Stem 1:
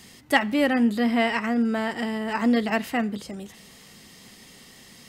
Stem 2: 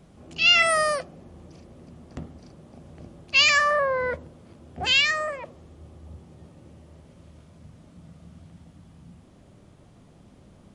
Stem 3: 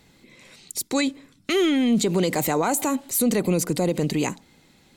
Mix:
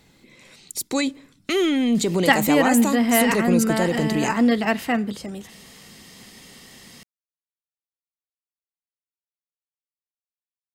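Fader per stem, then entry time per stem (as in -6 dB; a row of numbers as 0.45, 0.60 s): +3.0 dB, off, 0.0 dB; 1.95 s, off, 0.00 s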